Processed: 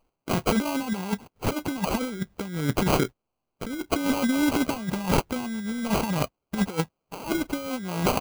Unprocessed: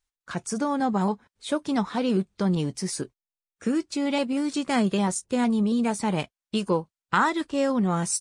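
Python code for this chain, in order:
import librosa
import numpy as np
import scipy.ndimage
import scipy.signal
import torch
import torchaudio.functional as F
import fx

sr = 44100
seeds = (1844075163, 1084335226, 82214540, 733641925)

y = fx.dynamic_eq(x, sr, hz=390.0, q=2.1, threshold_db=-42.0, ratio=4.0, max_db=-8, at=(4.04, 6.68))
y = fx.over_compress(y, sr, threshold_db=-30.0, ratio=-0.5)
y = fx.sample_hold(y, sr, seeds[0], rate_hz=1800.0, jitter_pct=0)
y = F.gain(torch.from_numpy(y), 5.5).numpy()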